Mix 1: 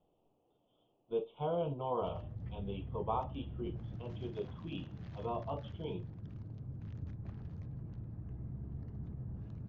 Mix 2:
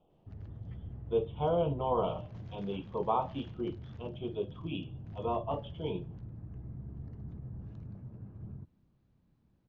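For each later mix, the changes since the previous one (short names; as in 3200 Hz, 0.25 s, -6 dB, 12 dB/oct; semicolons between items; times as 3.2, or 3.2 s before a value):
speech +5.5 dB; background: entry -1.75 s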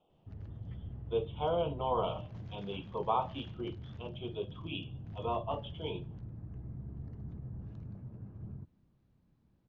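speech: add tilt +2.5 dB/oct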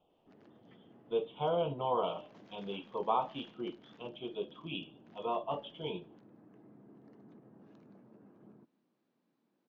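background: add HPF 250 Hz 24 dB/oct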